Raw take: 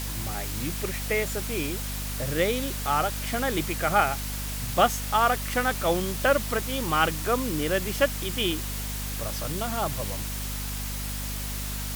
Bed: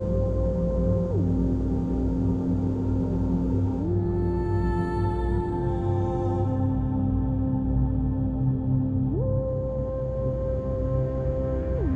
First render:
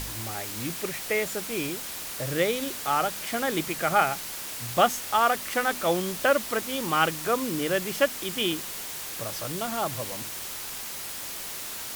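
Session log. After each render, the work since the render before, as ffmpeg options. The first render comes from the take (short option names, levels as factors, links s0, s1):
-af "bandreject=f=50:t=h:w=4,bandreject=f=100:t=h:w=4,bandreject=f=150:t=h:w=4,bandreject=f=200:t=h:w=4,bandreject=f=250:t=h:w=4"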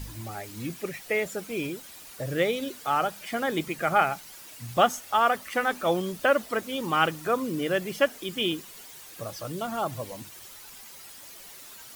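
-af "afftdn=nr=12:nf=-36"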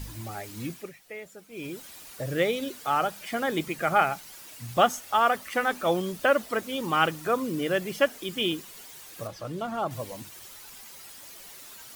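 -filter_complex "[0:a]asettb=1/sr,asplit=3[s0][s1][s2];[s0]atrim=end=9.274[s3];[s1]atrim=start=9.27:end=9.91,asetpts=PTS-STARTPTS,afade=t=in:d=0.004:c=qsin,afade=t=out:st=0.636:d=0.004:c=qsin,lowpass=f=2900:p=1[s4];[s2]atrim=start=9.906[s5];[s3][s4]acrossfade=d=0.004:c1=hsin:c2=qsin[s6];[s6][s5]acrossfade=d=0.004:c1=qsin:c2=hsin,asplit=3[s7][s8][s9];[s7]atrim=end=0.95,asetpts=PTS-STARTPTS,afade=t=out:st=0.64:d=0.31:silence=0.211349[s10];[s8]atrim=start=0.95:end=1.51,asetpts=PTS-STARTPTS,volume=0.211[s11];[s9]atrim=start=1.51,asetpts=PTS-STARTPTS,afade=t=in:d=0.31:silence=0.211349[s12];[s10][s11][s12]concat=n=3:v=0:a=1"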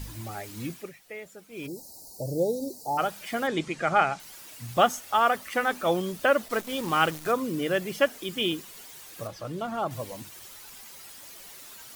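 -filter_complex "[0:a]asplit=3[s0][s1][s2];[s0]afade=t=out:st=1.66:d=0.02[s3];[s1]asuperstop=centerf=2000:order=20:qfactor=0.61,afade=t=in:st=1.66:d=0.02,afade=t=out:st=2.97:d=0.02[s4];[s2]afade=t=in:st=2.97:d=0.02[s5];[s3][s4][s5]amix=inputs=3:normalize=0,asettb=1/sr,asplit=3[s6][s7][s8];[s6]atrim=end=3.474[s9];[s7]atrim=start=3.47:end=4.2,asetpts=PTS-STARTPTS,afade=t=in:d=0.004:c=qsin,afade=t=out:st=0.726:d=0.004:c=qsin,lowpass=f=8000:w=0.5412,lowpass=f=8000:w=1.3066[s10];[s8]atrim=start=4.196[s11];[s9][s10]acrossfade=d=0.004:c1=hsin:c2=qsin[s12];[s12][s11]acrossfade=d=0.004:c1=qsin:c2=hsin,asettb=1/sr,asplit=3[s13][s14][s15];[s13]atrim=end=6.484[s16];[s14]atrim=start=6.48:end=7.32,asetpts=PTS-STARTPTS,afade=t=in:d=0.004:c=qsin,afade=t=out:st=0.836:d=0.004:c=qsin,acrusher=bits=7:dc=4:mix=0:aa=0.000001[s17];[s15]atrim=start=7.316[s18];[s16][s17]acrossfade=d=0.004:c1=hsin:c2=qsin[s19];[s19][s18]acrossfade=d=0.004:c1=qsin:c2=hsin"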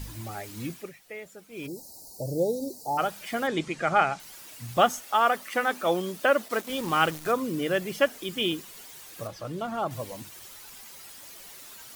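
-filter_complex "[0:a]asettb=1/sr,asplit=3[s0][s1][s2];[s0]atrim=end=5.044[s3];[s1]atrim=start=5.04:end=6.7,asetpts=PTS-STARTPTS,afade=t=in:d=0.004:c=qsin,afade=t=out:st=1.656:d=0.004:c=qsin,highpass=180[s4];[s2]atrim=start=6.696[s5];[s3][s4]acrossfade=d=0.004:c1=hsin:c2=qsin[s6];[s6][s5]acrossfade=d=0.004:c1=qsin:c2=hsin"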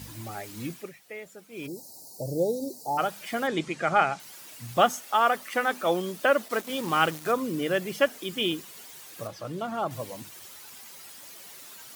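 -af "highpass=96"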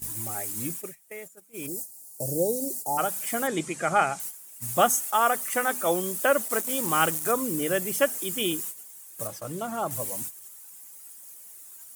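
-af "agate=range=0.224:threshold=0.00708:ratio=16:detection=peak,highshelf=f=6100:t=q:w=1.5:g=13"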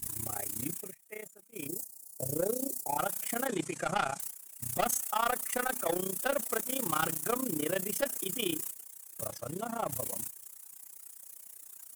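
-af "asoftclip=type=tanh:threshold=0.0841,tremolo=f=30:d=0.889"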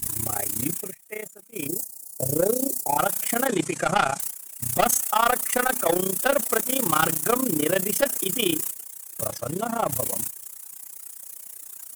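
-af "volume=2.99"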